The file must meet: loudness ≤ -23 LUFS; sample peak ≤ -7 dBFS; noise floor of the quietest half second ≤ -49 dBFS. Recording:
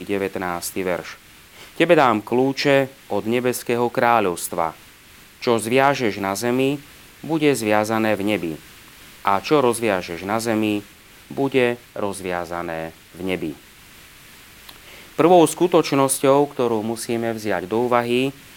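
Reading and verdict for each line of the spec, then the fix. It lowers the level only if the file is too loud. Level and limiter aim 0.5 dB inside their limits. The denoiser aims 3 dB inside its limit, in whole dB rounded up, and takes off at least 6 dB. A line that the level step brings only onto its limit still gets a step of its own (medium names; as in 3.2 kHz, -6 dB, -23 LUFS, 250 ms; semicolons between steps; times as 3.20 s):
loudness -20.5 LUFS: fail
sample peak -2.0 dBFS: fail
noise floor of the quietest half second -47 dBFS: fail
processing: trim -3 dB; peak limiter -7.5 dBFS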